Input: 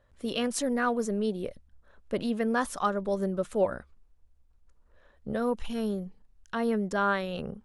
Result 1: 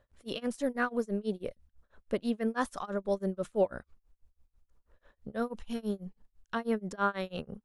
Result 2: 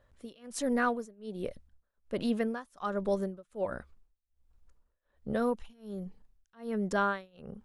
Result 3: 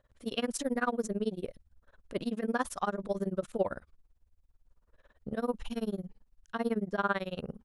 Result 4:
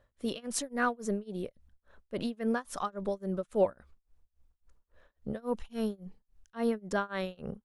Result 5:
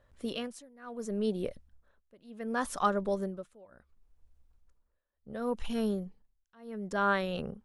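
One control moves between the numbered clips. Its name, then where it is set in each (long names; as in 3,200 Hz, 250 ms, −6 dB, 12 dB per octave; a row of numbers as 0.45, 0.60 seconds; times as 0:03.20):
amplitude tremolo, speed: 6.1, 1.3, 18, 3.6, 0.69 Hertz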